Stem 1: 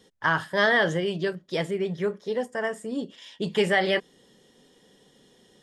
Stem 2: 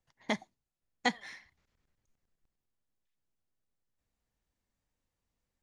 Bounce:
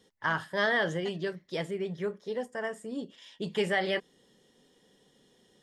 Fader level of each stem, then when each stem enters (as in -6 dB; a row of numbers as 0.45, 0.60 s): -6.0, -16.5 dB; 0.00, 0.00 s